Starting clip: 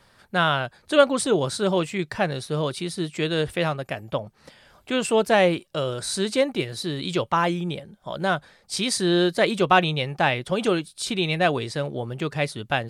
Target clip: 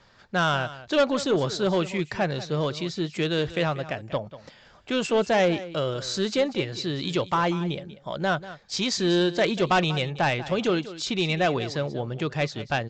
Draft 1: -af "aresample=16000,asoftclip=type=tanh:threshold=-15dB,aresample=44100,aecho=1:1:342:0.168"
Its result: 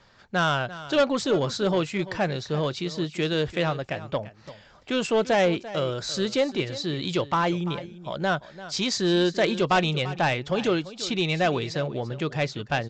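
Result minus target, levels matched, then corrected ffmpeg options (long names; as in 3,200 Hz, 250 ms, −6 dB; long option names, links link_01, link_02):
echo 152 ms late
-af "aresample=16000,asoftclip=type=tanh:threshold=-15dB,aresample=44100,aecho=1:1:190:0.168"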